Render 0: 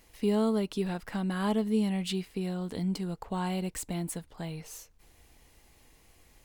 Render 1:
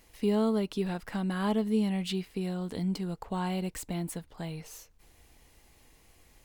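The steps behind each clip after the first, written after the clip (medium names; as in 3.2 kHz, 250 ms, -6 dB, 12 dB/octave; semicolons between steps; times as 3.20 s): dynamic bell 8.7 kHz, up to -4 dB, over -53 dBFS, Q 1.1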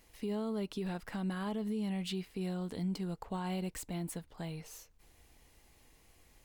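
peak limiter -25.5 dBFS, peak gain reduction 7.5 dB; trim -3.5 dB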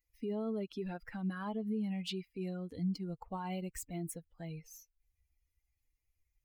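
expander on every frequency bin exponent 2; trim +2.5 dB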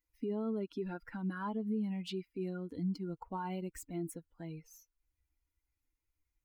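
small resonant body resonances 300/970/1400 Hz, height 11 dB, ringing for 20 ms; trim -4.5 dB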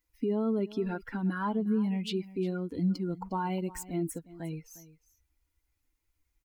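delay 356 ms -18 dB; trim +7 dB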